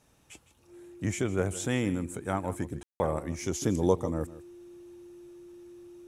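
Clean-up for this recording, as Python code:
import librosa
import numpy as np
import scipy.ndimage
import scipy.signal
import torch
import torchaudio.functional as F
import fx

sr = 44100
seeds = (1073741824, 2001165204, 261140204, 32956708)

y = fx.notch(x, sr, hz=350.0, q=30.0)
y = fx.fix_ambience(y, sr, seeds[0], print_start_s=0.0, print_end_s=0.5, start_s=2.83, end_s=3.0)
y = fx.fix_echo_inverse(y, sr, delay_ms=159, level_db=-16.5)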